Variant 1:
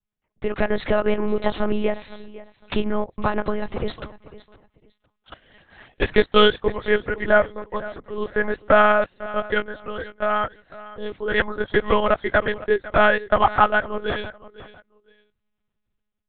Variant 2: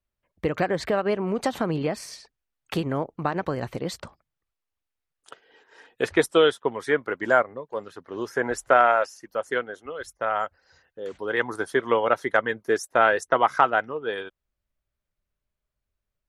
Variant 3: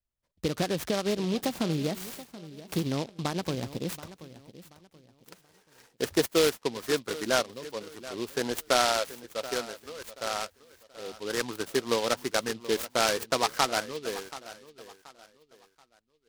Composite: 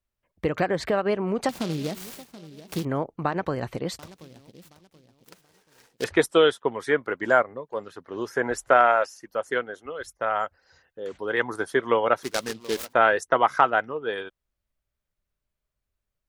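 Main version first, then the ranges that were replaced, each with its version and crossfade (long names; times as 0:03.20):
2
0:01.49–0:02.85: punch in from 3
0:03.99–0:06.04: punch in from 3
0:12.23–0:12.93: punch in from 3
not used: 1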